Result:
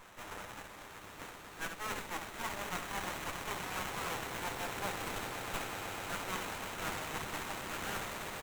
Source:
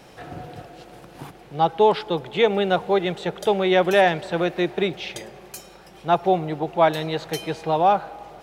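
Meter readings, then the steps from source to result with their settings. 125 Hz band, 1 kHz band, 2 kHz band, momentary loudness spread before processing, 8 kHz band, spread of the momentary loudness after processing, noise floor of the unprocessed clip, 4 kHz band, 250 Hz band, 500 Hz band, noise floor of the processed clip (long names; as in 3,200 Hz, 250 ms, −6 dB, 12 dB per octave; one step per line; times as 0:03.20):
−16.5 dB, −17.5 dB, −10.5 dB, 20 LU, 0.0 dB, 9 LU, −47 dBFS, −12.0 dB, −20.0 dB, −24.5 dB, −51 dBFS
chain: each half-wave held at its own peak
meter weighting curve ITU-R 468
reversed playback
downward compressor 6 to 1, threshold −21 dBFS, peak gain reduction 17.5 dB
reversed playback
flat-topped bell 4,500 Hz −14 dB
on a send: echo that builds up and dies away 125 ms, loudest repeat 8, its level −9 dB
on the sum: brick-wall band-stop 100–3,700 Hz
ambience of single reflections 10 ms −4 dB, 69 ms −5.5 dB
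windowed peak hold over 9 samples
level −2.5 dB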